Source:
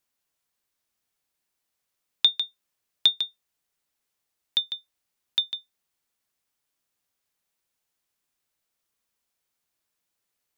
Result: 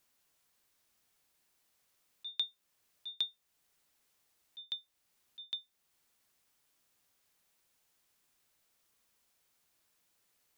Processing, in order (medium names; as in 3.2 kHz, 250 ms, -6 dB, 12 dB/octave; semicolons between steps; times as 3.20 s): slow attack 606 ms; trim +5.5 dB